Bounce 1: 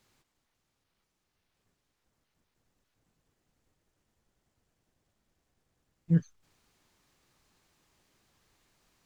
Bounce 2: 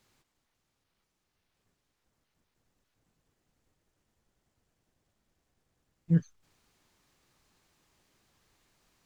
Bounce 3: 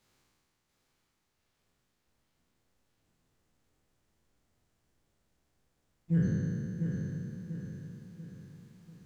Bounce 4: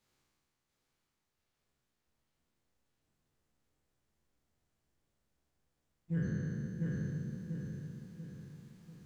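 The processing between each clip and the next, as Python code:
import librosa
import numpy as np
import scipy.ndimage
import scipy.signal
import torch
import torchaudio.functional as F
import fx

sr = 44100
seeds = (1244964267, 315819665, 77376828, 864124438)

y1 = x
y2 = fx.spec_trails(y1, sr, decay_s=2.69)
y2 = fx.echo_feedback(y2, sr, ms=690, feedback_pct=45, wet_db=-6.0)
y2 = y2 * librosa.db_to_amplitude(-4.5)
y3 = fx.doubler(y2, sr, ms=14.0, db=-11)
y3 = fx.dynamic_eq(y3, sr, hz=1500.0, q=0.75, threshold_db=-50.0, ratio=4.0, max_db=5)
y3 = fx.rider(y3, sr, range_db=3, speed_s=0.5)
y3 = y3 * librosa.db_to_amplitude(-3.5)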